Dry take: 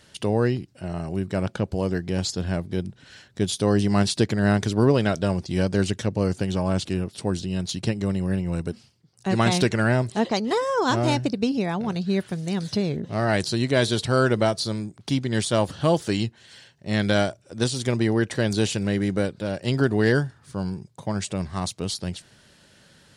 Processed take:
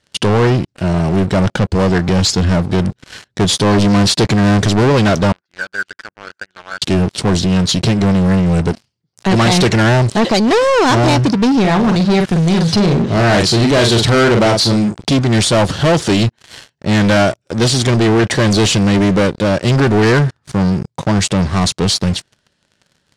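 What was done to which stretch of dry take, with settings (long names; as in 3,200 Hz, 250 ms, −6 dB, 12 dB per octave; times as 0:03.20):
0:05.32–0:06.82: resonant band-pass 1,500 Hz, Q 8.3
0:11.60–0:15.14: double-tracking delay 43 ms −7 dB
whole clip: leveller curve on the samples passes 5; low-pass filter 7,800 Hz 12 dB per octave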